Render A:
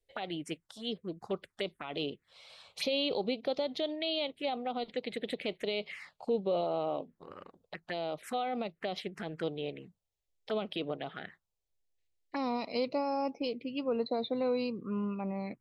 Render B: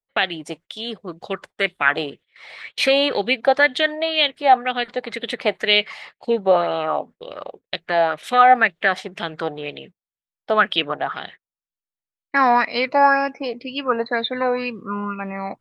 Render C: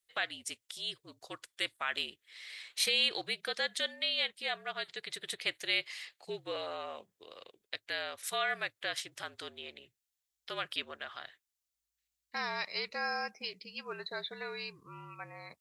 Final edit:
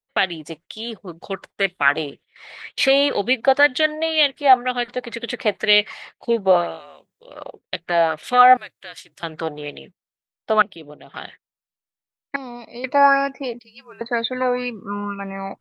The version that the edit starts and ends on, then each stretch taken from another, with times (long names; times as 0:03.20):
B
0:06.70–0:07.30: punch in from C, crossfade 0.24 s
0:08.57–0:09.23: punch in from C
0:10.62–0:11.14: punch in from A
0:12.36–0:12.84: punch in from A
0:13.59–0:14.01: punch in from C